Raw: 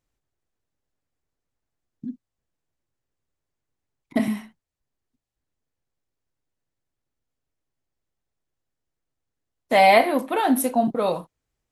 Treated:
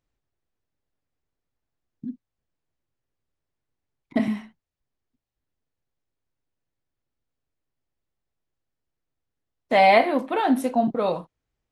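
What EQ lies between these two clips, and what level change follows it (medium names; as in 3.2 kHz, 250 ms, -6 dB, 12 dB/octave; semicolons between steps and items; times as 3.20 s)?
tape spacing loss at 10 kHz 21 dB; treble shelf 2.7 kHz +8 dB; 0.0 dB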